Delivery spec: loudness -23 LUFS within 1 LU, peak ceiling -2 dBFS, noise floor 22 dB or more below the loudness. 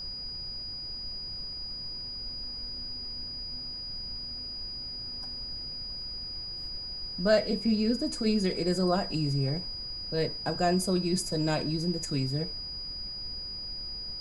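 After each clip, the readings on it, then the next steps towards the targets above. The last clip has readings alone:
steady tone 4.9 kHz; tone level -36 dBFS; noise floor -39 dBFS; noise floor target -54 dBFS; loudness -31.5 LUFS; peak level -11.0 dBFS; loudness target -23.0 LUFS
-> band-stop 4.9 kHz, Q 30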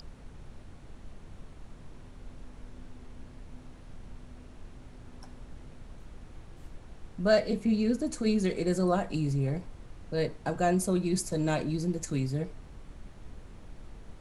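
steady tone not found; noise floor -50 dBFS; noise floor target -52 dBFS
-> noise print and reduce 6 dB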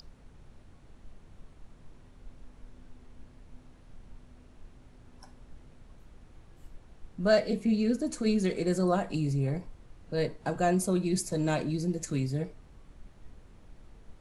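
noise floor -56 dBFS; loudness -29.5 LUFS; peak level -11.5 dBFS; loudness target -23.0 LUFS
-> trim +6.5 dB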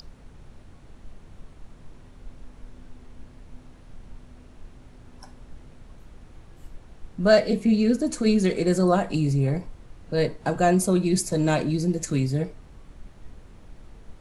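loudness -23.0 LUFS; peak level -5.0 dBFS; noise floor -49 dBFS

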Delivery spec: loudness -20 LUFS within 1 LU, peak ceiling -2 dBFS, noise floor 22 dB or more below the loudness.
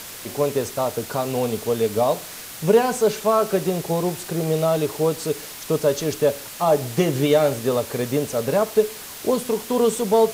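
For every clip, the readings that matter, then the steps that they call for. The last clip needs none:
noise floor -37 dBFS; noise floor target -44 dBFS; loudness -22.0 LUFS; peak level -5.5 dBFS; loudness target -20.0 LUFS
-> noise reduction 7 dB, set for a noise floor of -37 dBFS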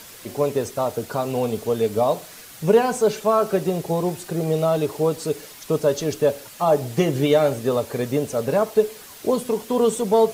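noise floor -42 dBFS; noise floor target -44 dBFS
-> noise reduction 6 dB, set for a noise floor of -42 dBFS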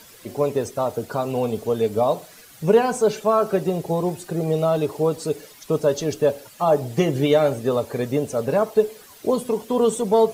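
noise floor -47 dBFS; loudness -22.0 LUFS; peak level -5.5 dBFS; loudness target -20.0 LUFS
-> trim +2 dB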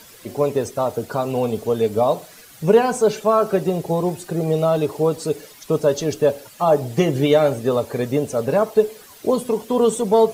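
loudness -20.0 LUFS; peak level -3.5 dBFS; noise floor -45 dBFS

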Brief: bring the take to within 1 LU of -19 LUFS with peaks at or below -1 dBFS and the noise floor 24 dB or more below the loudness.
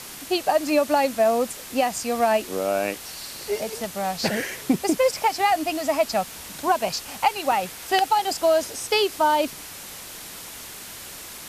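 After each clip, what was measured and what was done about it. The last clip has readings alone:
dropouts 1; longest dropout 1.8 ms; noise floor -39 dBFS; noise floor target -48 dBFS; loudness -23.5 LUFS; peak level -6.0 dBFS; loudness target -19.0 LUFS
-> interpolate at 7.52 s, 1.8 ms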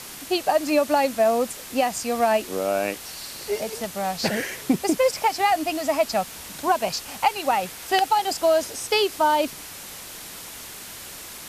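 dropouts 0; noise floor -39 dBFS; noise floor target -48 dBFS
-> noise reduction 9 dB, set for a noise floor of -39 dBFS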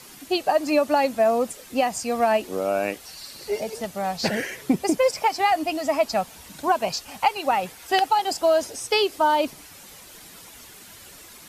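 noise floor -46 dBFS; noise floor target -48 dBFS
-> noise reduction 6 dB, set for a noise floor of -46 dBFS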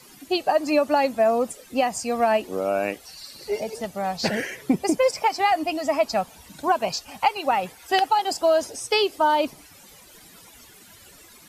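noise floor -50 dBFS; loudness -23.5 LUFS; peak level -6.5 dBFS; loudness target -19.0 LUFS
-> trim +4.5 dB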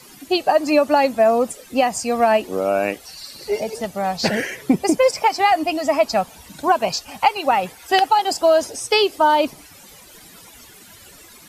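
loudness -19.0 LUFS; peak level -2.0 dBFS; noise floor -45 dBFS

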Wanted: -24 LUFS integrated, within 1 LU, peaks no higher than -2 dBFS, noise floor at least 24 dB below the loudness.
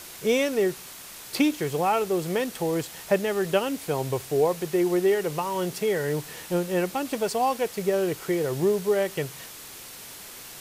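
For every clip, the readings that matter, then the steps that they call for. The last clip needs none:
noise floor -43 dBFS; noise floor target -50 dBFS; loudness -26.0 LUFS; peak level -10.0 dBFS; loudness target -24.0 LUFS
-> noise print and reduce 7 dB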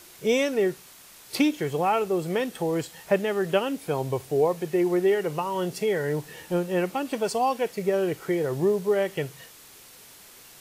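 noise floor -50 dBFS; loudness -26.0 LUFS; peak level -10.0 dBFS; loudness target -24.0 LUFS
-> trim +2 dB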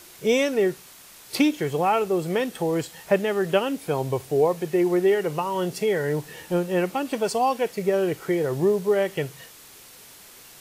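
loudness -24.0 LUFS; peak level -8.0 dBFS; noise floor -48 dBFS

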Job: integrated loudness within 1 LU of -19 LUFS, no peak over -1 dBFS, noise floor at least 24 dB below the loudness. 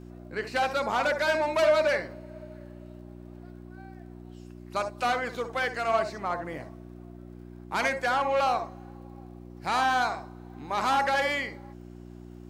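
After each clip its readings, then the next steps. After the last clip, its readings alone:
tick rate 35 per s; hum 60 Hz; highest harmonic 360 Hz; hum level -42 dBFS; loudness -27.5 LUFS; peak level -12.0 dBFS; loudness target -19.0 LUFS
-> de-click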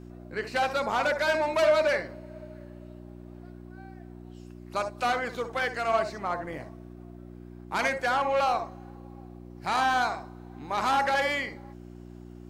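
tick rate 0 per s; hum 60 Hz; highest harmonic 360 Hz; hum level -43 dBFS
-> de-hum 60 Hz, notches 6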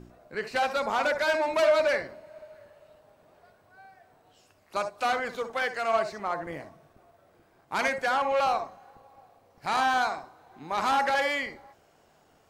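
hum not found; loudness -27.5 LUFS; peak level -12.0 dBFS; loudness target -19.0 LUFS
-> trim +8.5 dB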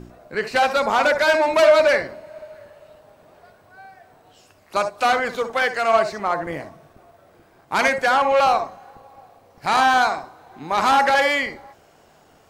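loudness -19.0 LUFS; peak level -3.5 dBFS; noise floor -55 dBFS

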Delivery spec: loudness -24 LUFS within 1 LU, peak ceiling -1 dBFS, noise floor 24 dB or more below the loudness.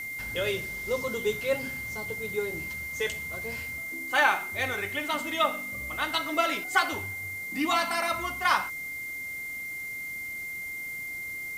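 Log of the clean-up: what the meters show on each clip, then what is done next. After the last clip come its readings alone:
steady tone 2.1 kHz; tone level -34 dBFS; noise floor -37 dBFS; noise floor target -54 dBFS; loudness -29.5 LUFS; peak level -9.0 dBFS; loudness target -24.0 LUFS
-> band-stop 2.1 kHz, Q 30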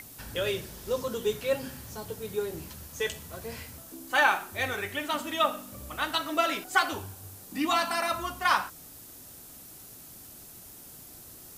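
steady tone not found; noise floor -48 dBFS; noise floor target -54 dBFS
-> noise print and reduce 6 dB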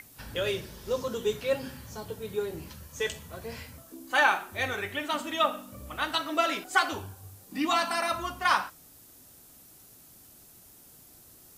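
noise floor -54 dBFS; loudness -29.5 LUFS; peak level -9.5 dBFS; loudness target -24.0 LUFS
-> trim +5.5 dB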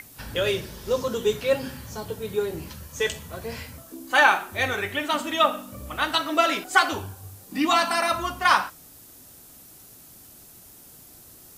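loudness -24.0 LUFS; peak level -4.0 dBFS; noise floor -49 dBFS

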